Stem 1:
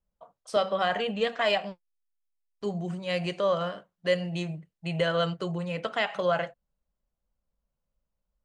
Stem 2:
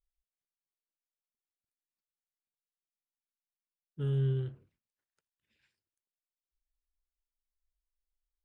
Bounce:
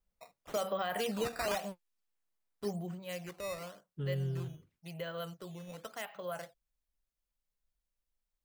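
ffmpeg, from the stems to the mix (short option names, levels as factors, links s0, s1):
-filter_complex "[0:a]acrusher=samples=8:mix=1:aa=0.000001:lfo=1:lforange=12.8:lforate=0.93,volume=0.631,afade=t=out:st=2.53:d=0.7:silence=0.298538[s0];[1:a]acompressor=threshold=0.01:ratio=2,volume=1.12[s1];[s0][s1]amix=inputs=2:normalize=0,alimiter=level_in=1.12:limit=0.0631:level=0:latency=1:release=89,volume=0.891"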